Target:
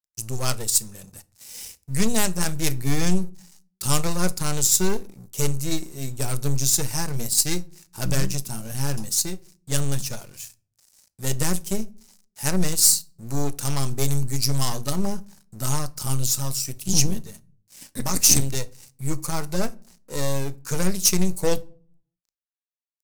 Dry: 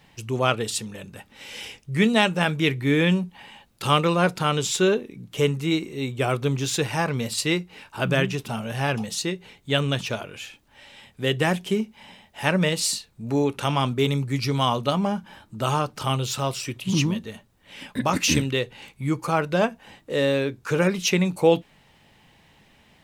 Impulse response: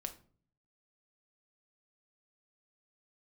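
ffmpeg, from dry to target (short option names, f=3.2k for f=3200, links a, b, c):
-filter_complex "[0:a]equalizer=f=79:t=o:w=2.5:g=9,aeval=exprs='sgn(val(0))*max(abs(val(0))-0.0075,0)':c=same,aeval=exprs='0.708*(cos(1*acos(clip(val(0)/0.708,-1,1)))-cos(1*PI/2))+0.0794*(cos(8*acos(clip(val(0)/0.708,-1,1)))-cos(8*PI/2))':c=same,aexciter=amount=9.4:drive=3.5:freq=4.6k,asplit=2[a][b];[1:a]atrim=start_sample=2205,lowshelf=f=82:g=11.5[c];[b][c]afir=irnorm=-1:irlink=0,volume=-5dB[d];[a][d]amix=inputs=2:normalize=0,volume=-11dB"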